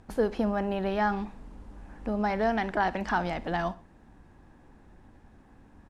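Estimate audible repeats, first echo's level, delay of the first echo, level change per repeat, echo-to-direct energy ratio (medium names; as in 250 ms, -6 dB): 2, -18.5 dB, 62 ms, -8.0 dB, -18.0 dB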